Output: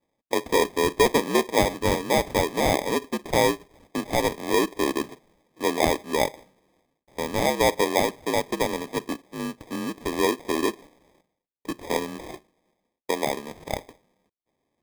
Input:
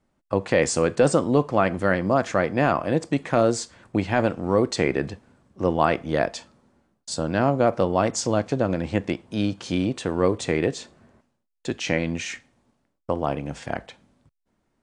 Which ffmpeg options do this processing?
-af "highpass=f=330:t=q:w=0.5412,highpass=f=330:t=q:w=1.307,lowpass=f=2.2k:t=q:w=0.5176,lowpass=f=2.2k:t=q:w=0.7071,lowpass=f=2.2k:t=q:w=1.932,afreqshift=-62,acrusher=samples=31:mix=1:aa=0.000001"

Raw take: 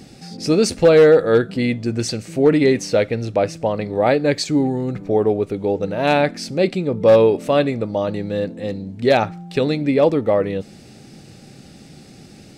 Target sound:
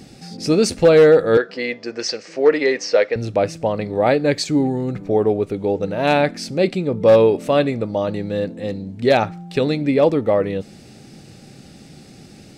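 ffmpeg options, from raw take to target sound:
-filter_complex "[0:a]asettb=1/sr,asplit=3[a][b][c];[a]atrim=end=1.374[d];[b]atrim=start=1.37:end=3.16,asetpts=PTS-STARTPTS,afade=t=in:d=0.004:c=qsin,afade=t=out:st=1.786:d=0.004:c=qsin,highpass=460,equalizer=f=480:t=q:w=4:g=6,equalizer=f=1.1k:t=q:w=4:g=4,equalizer=f=1.8k:t=q:w=4:g=6,equalizer=f=3.6k:t=q:w=4:g=-4,equalizer=f=5.2k:t=q:w=4:g=7,lowpass=f=6.2k:w=0.5412,lowpass=f=6.2k:w=1.3066[e];[c]atrim=start=3.156[f];[d][e]acrossfade=d=0.004:c1=hsin:c2=qsin[g];[g][f]acrossfade=d=0.004:c1=qsin:c2=hsin"

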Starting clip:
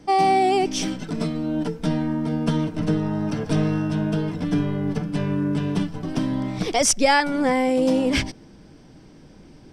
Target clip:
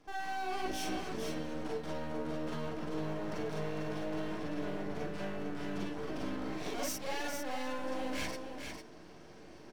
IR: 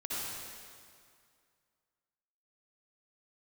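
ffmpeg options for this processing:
-filter_complex "[0:a]asplit=2[a][b];[b]highpass=f=720:p=1,volume=21dB,asoftclip=type=tanh:threshold=-6dB[c];[a][c]amix=inputs=2:normalize=0,lowpass=f=1.5k:p=1,volume=-6dB,areverse,acompressor=threshold=-23dB:ratio=6,areverse,aeval=exprs='max(val(0),0)':c=same,highshelf=f=5.9k:g=7,aecho=1:1:451:0.501[d];[1:a]atrim=start_sample=2205,atrim=end_sample=3969,asetrate=70560,aresample=44100[e];[d][e]afir=irnorm=-1:irlink=0,volume=-4dB"

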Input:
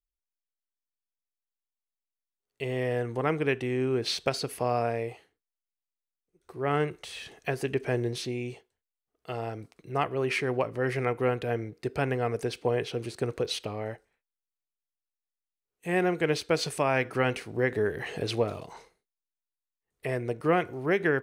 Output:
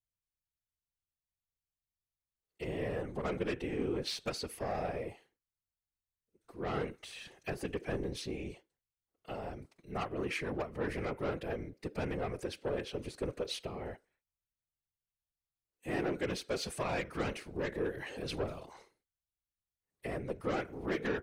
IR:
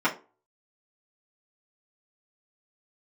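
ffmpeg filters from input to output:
-af "aeval=exprs='0.237*(cos(1*acos(clip(val(0)/0.237,-1,1)))-cos(1*PI/2))+0.0422*(cos(5*acos(clip(val(0)/0.237,-1,1)))-cos(5*PI/2))':c=same,afftfilt=real='hypot(re,im)*cos(2*PI*random(0))':imag='hypot(re,im)*sin(2*PI*random(1))':win_size=512:overlap=0.75,volume=-6dB"

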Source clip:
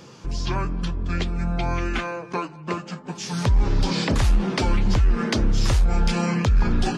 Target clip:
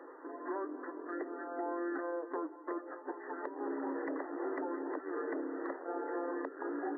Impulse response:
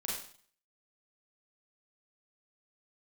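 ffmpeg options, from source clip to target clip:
-filter_complex "[0:a]afftfilt=real='re*between(b*sr/4096,260,2000)':imag='im*between(b*sr/4096,260,2000)':win_size=4096:overlap=0.75,acrossover=split=610[a][b];[a]alimiter=level_in=5.5dB:limit=-24dB:level=0:latency=1:release=52,volume=-5.5dB[c];[b]acompressor=threshold=-42dB:ratio=6[d];[c][d]amix=inputs=2:normalize=0,volume=-2.5dB"

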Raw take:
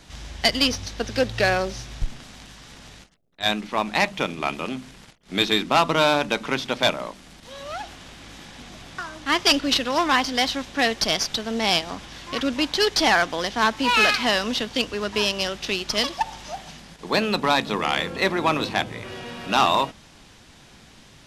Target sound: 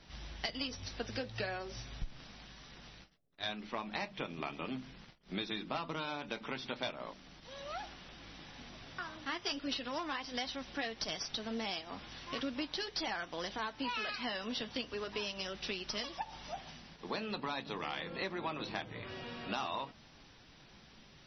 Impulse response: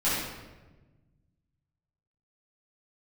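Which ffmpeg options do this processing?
-filter_complex "[0:a]asettb=1/sr,asplit=3[a][b][c];[a]atrim=end=3.864[d];[b]atrim=start=3.86:end=6.06,asetpts=PTS-STARTPTS,afade=t=in:d=0.004:c=qsin,afade=t=out:st=2.196:d=0.004:c=qsin,lowshelf=f=380:g=2.5[e];[c]atrim=start=6.056[f];[d][e]acrossfade=d=0.004:c1=hsin:c2=qsin[g];[g][f]acrossfade=d=0.004:c1=qsin:c2=hsin,acompressor=threshold=-25dB:ratio=8,flanger=delay=5:depth=4:regen=-61:speed=0.38:shape=triangular,volume=-5dB" -ar 24000 -c:a libmp3lame -b:a 24k

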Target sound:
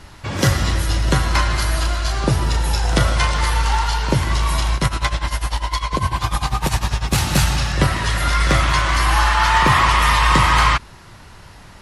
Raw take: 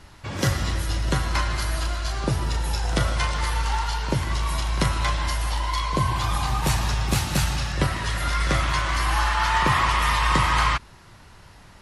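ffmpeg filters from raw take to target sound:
-filter_complex "[0:a]asettb=1/sr,asplit=3[a][b][c];[a]atrim=end=4.754[d];[b]atrim=start=4.75:end=7.18,asetpts=PTS-STARTPTS,afade=t=in:d=0.004:c=qsin,afade=t=out:st=2.426:d=0.004:c=qsin,tremolo=f=10:d=0.85[e];[c]atrim=start=7.176[f];[d][e]acrossfade=d=0.004:c1=hsin:c2=qsin[g];[g][f]acrossfade=d=0.004:c1=qsin:c2=hsin,asoftclip=type=hard:threshold=-12.5dB,volume=6.5dB"

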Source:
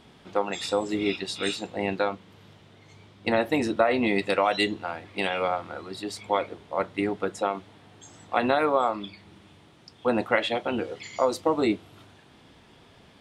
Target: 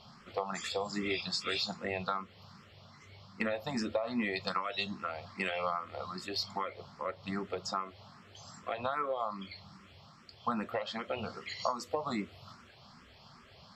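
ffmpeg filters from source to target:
-filter_complex "[0:a]superequalizer=6b=0.316:7b=0.562:10b=2:14b=2.82:16b=0.316,acompressor=threshold=-27dB:ratio=8,asetrate=42336,aresample=44100,asplit=2[a][b];[b]afreqshift=2.5[c];[a][c]amix=inputs=2:normalize=1"

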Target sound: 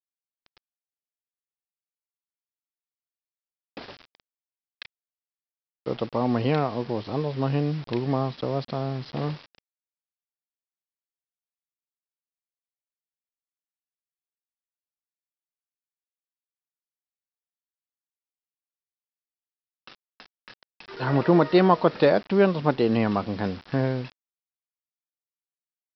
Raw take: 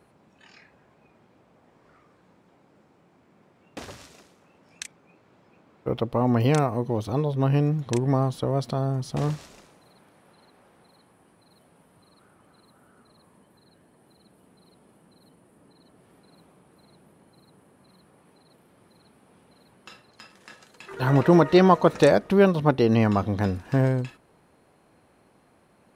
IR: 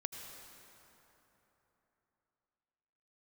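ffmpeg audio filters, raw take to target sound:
-af "highpass=140,aresample=11025,acrusher=bits=6:mix=0:aa=0.000001,aresample=44100,volume=-1.5dB"

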